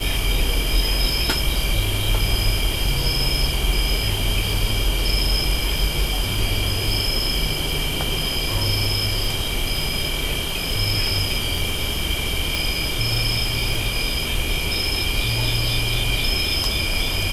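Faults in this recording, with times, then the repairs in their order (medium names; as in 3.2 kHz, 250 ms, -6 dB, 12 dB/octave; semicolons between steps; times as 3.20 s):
crackle 47 per s -27 dBFS
12.55 s: pop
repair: de-click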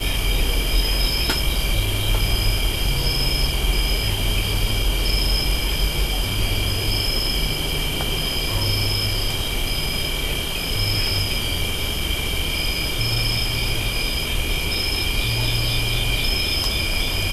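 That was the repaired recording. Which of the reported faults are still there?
12.55 s: pop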